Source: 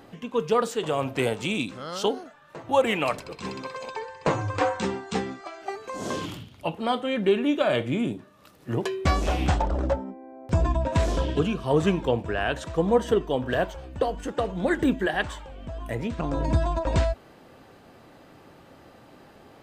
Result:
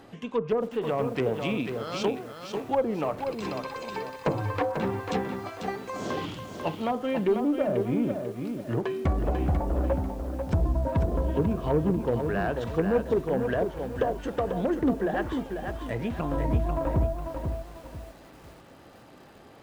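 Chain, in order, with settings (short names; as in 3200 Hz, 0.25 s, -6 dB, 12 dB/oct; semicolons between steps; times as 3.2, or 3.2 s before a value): treble ducked by the level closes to 570 Hz, closed at -19 dBFS; added harmonics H 3 -45 dB, 4 -19 dB, 5 -26 dB, 6 -22 dB, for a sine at -10.5 dBFS; lo-fi delay 0.493 s, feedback 35%, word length 8-bit, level -6 dB; gain -2.5 dB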